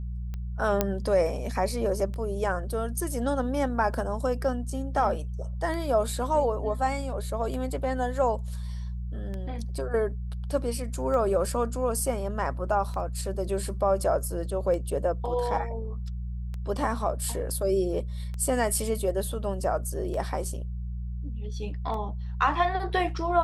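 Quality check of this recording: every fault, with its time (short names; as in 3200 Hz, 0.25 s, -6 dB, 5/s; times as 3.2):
hum 60 Hz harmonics 3 -33 dBFS
tick 33 1/3 rpm -24 dBFS
0.81 pop -8 dBFS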